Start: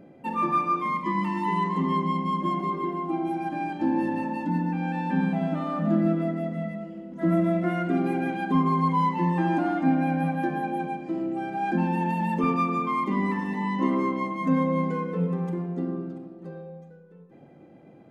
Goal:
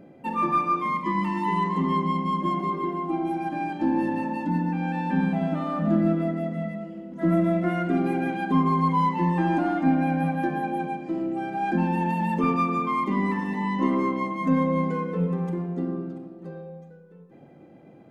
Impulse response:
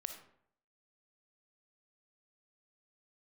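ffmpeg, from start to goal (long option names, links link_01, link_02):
-af "aeval=exprs='0.251*(cos(1*acos(clip(val(0)/0.251,-1,1)))-cos(1*PI/2))+0.00251*(cos(4*acos(clip(val(0)/0.251,-1,1)))-cos(4*PI/2))':channel_layout=same,volume=1dB"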